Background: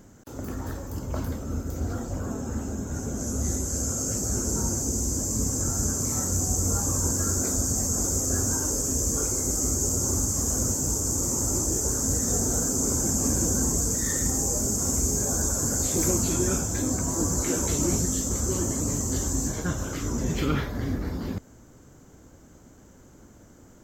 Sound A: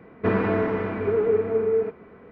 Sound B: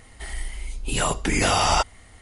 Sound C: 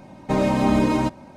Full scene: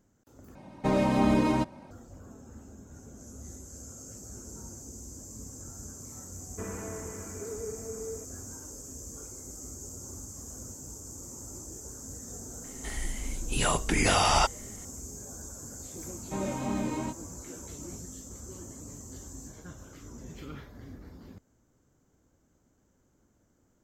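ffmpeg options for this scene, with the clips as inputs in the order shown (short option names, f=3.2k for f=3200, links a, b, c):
-filter_complex "[3:a]asplit=2[a][b];[0:a]volume=-17.5dB[c];[b]flanger=delay=20:depth=3.5:speed=2.7[d];[c]asplit=2[e][f];[e]atrim=end=0.554[g];[a]atrim=end=1.36,asetpts=PTS-STARTPTS,volume=-5dB[h];[f]atrim=start=1.906[i];[1:a]atrim=end=2.31,asetpts=PTS-STARTPTS,volume=-17.5dB,afade=t=in:d=0.004:c=hsin,afade=t=out:st=2.306:d=0.004:c=hsin,adelay=279594S[j];[2:a]atrim=end=2.21,asetpts=PTS-STARTPTS,volume=-3.5dB,afade=t=in:d=0.004:c=hsin,afade=t=out:st=2.206:d=0.004:c=hsin,adelay=12640[k];[d]atrim=end=1.36,asetpts=PTS-STARTPTS,volume=-10.5dB,afade=t=in:d=0.004:c=hsin,afade=t=out:st=1.356:d=0.004:c=hsin,adelay=16020[l];[g][h]acrossfade=d=0.004:c1=hsin:c2=hsin[m];[m][i]acrossfade=d=0.004:c1=hsin:c2=hsin[n];[n][j][k][l]amix=inputs=4:normalize=0"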